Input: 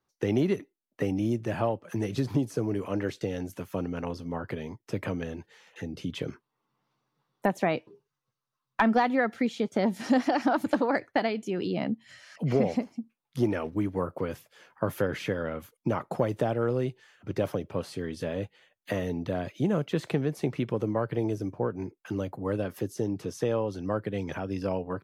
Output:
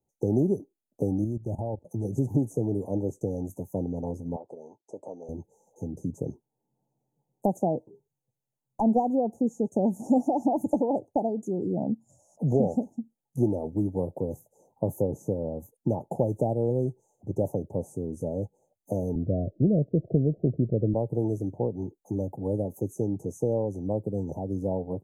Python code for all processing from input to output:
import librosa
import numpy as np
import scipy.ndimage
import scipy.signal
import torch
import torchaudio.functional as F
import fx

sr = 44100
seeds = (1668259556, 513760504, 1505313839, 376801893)

y = fx.chain(x, sr, fx.peak_eq(hz=82.0, db=8.5, octaves=0.89),
    fx.level_steps(step_db=16), at=(1.24, 2.05))
y = fx.chain(y, sr, fx.bandpass_edges(low_hz=600.0, high_hz=5800.0),
    fx.resample_bad(factor=2, down='none', up='filtered'), at=(4.36, 5.29))
y = fx.chain(y, sr, fx.steep_lowpass(hz=690.0, slope=96),
    fx.low_shelf(hz=100.0, db=11.0), at=(19.15, 20.94))
y = scipy.signal.sosfilt(scipy.signal.cheby1(5, 1.0, [860.0, 6400.0], 'bandstop', fs=sr, output='sos'), y)
y = fx.low_shelf(y, sr, hz=320.0, db=4.0)